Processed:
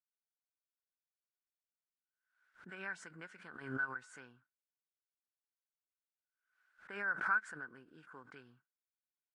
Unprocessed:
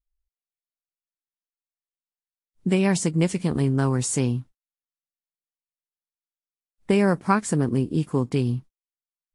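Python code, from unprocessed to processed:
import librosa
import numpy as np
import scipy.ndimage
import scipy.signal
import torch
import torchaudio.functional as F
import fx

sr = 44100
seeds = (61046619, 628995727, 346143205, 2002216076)

y = fx.bandpass_q(x, sr, hz=1500.0, q=18.0)
y = fx.pre_swell(y, sr, db_per_s=85.0)
y = y * librosa.db_to_amplitude(3.0)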